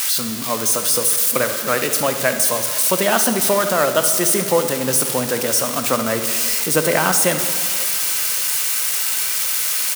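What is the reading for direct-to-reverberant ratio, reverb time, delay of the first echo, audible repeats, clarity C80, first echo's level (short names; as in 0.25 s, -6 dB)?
7.0 dB, 2.5 s, 71 ms, 1, 9.5 dB, -14.0 dB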